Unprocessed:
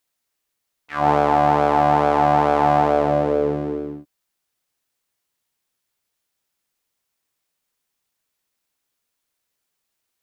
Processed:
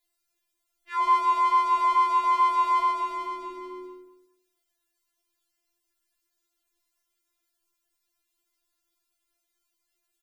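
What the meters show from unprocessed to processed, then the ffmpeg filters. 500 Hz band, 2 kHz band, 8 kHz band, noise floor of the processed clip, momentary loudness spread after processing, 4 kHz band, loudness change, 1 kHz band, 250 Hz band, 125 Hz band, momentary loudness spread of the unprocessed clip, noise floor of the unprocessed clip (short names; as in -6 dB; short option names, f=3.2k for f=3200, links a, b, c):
-23.0 dB, -6.5 dB, n/a, -80 dBFS, 17 LU, -2.5 dB, -5.0 dB, -4.0 dB, under -20 dB, under -40 dB, 11 LU, -78 dBFS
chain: -filter_complex "[0:a]bass=f=250:g=11,treble=f=4k:g=1,asplit=2[a][b];[b]adelay=205,lowpass=f=1.6k:p=1,volume=-10.5dB,asplit=2[c][d];[d]adelay=205,lowpass=f=1.6k:p=1,volume=0.21,asplit=2[e][f];[f]adelay=205,lowpass=f=1.6k:p=1,volume=0.21[g];[c][e][g]amix=inputs=3:normalize=0[h];[a][h]amix=inputs=2:normalize=0,afftfilt=real='re*4*eq(mod(b,16),0)':imag='im*4*eq(mod(b,16),0)':win_size=2048:overlap=0.75"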